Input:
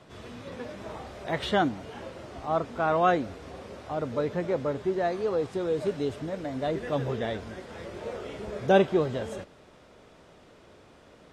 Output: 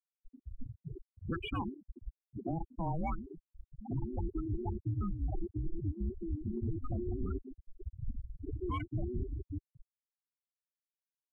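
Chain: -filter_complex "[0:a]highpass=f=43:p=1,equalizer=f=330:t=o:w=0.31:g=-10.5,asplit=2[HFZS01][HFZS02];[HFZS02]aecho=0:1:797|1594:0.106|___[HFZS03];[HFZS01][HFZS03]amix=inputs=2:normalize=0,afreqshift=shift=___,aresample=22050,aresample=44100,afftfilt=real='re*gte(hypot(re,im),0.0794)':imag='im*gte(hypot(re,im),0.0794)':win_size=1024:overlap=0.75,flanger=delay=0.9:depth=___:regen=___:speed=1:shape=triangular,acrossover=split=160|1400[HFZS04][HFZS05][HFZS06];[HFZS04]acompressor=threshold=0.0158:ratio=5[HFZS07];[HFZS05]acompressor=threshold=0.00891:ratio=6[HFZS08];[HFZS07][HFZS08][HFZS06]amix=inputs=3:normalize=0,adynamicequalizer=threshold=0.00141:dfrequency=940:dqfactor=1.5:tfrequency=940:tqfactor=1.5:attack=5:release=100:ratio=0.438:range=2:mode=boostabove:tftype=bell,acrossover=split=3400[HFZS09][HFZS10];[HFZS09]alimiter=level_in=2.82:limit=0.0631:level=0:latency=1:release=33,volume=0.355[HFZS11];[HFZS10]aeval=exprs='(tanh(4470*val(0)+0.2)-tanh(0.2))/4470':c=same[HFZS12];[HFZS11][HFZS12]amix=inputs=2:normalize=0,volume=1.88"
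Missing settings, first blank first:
0.0307, -490, 2.1, 43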